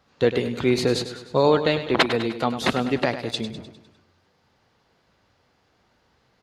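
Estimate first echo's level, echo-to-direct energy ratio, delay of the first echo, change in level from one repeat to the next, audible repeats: −11.0 dB, −9.5 dB, 101 ms, −5.5 dB, 5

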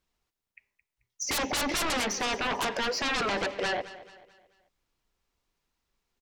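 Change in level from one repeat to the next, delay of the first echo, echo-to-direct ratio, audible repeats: −7.5 dB, 218 ms, −15.0 dB, 3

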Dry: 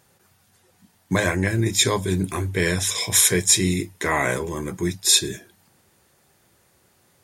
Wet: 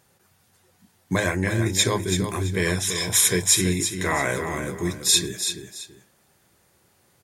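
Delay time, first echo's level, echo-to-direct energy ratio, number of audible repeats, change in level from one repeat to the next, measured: 334 ms, −8.0 dB, −7.5 dB, 2, −11.5 dB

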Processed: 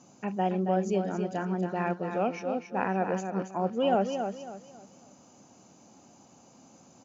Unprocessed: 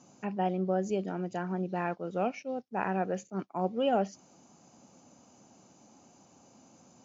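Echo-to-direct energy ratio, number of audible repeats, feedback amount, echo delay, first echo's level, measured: −6.5 dB, 3, 31%, 275 ms, −7.0 dB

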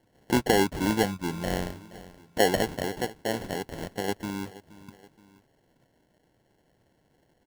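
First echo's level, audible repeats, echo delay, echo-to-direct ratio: −18.0 dB, 2, 474 ms, −17.0 dB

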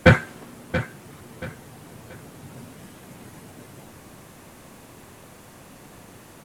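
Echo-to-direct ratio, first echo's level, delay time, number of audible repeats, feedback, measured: −11.5 dB, −12.0 dB, 680 ms, 3, 33%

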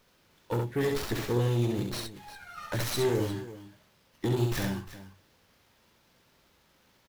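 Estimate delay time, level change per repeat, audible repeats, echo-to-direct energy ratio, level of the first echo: 67 ms, repeats not evenly spaced, 2, −3.5 dB, −4.0 dB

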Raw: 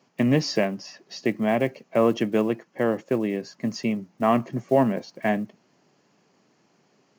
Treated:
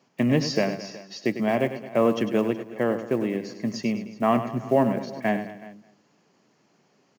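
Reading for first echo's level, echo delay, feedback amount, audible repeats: −10.5 dB, 100 ms, repeats not evenly spaced, 4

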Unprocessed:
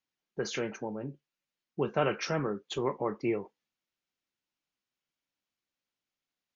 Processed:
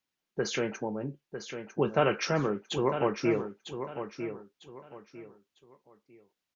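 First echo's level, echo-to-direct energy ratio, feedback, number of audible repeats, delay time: −9.0 dB, −8.5 dB, 29%, 3, 951 ms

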